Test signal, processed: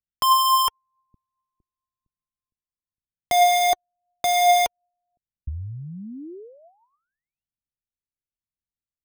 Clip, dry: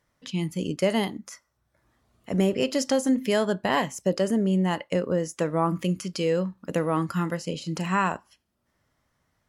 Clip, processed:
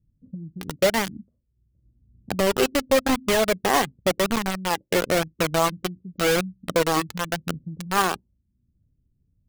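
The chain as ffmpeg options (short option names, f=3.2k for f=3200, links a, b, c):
-filter_complex "[0:a]lowpass=2.8k,lowshelf=f=310:g=7,acrossover=split=300[a][b];[a]acompressor=threshold=-33dB:ratio=16[c];[b]acrusher=bits=3:mix=0:aa=0.000001[d];[c][d]amix=inputs=2:normalize=0,flanger=delay=0.6:depth=2.2:regen=49:speed=0.93:shape=triangular,volume=6.5dB"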